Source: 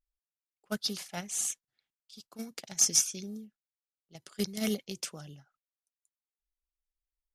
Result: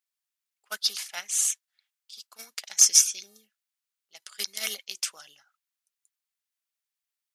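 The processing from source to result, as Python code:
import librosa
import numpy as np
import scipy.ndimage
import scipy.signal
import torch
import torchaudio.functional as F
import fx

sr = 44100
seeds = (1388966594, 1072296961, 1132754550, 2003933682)

y = scipy.signal.sosfilt(scipy.signal.butter(2, 1300.0, 'highpass', fs=sr, output='sos'), x)
y = y * 10.0 ** (7.5 / 20.0)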